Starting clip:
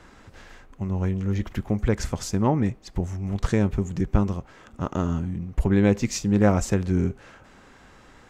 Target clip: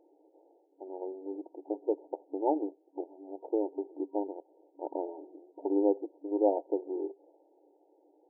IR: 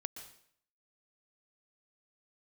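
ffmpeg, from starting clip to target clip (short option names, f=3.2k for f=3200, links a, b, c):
-af "adynamicsmooth=sensitivity=1.5:basefreq=520,afftfilt=real='re*between(b*sr/4096,280,940)':imag='im*between(b*sr/4096,280,940)':win_size=4096:overlap=0.75,volume=-3dB"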